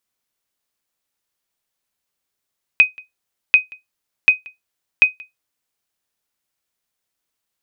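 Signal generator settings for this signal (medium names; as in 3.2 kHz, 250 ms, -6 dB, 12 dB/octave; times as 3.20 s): sonar ping 2.51 kHz, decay 0.16 s, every 0.74 s, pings 4, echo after 0.18 s, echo -26.5 dB -1.5 dBFS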